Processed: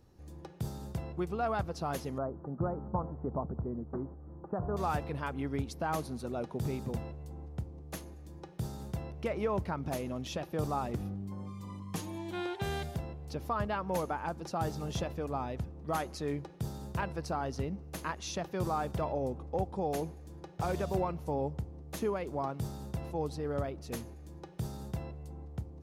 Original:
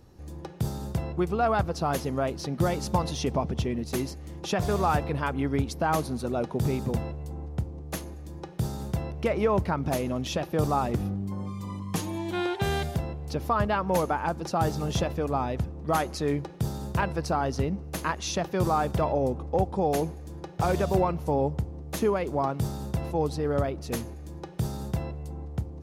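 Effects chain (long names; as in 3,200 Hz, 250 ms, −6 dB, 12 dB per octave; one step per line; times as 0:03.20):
0:02.18–0:04.77: Butterworth low-pass 1,400 Hz 48 dB per octave
level −8 dB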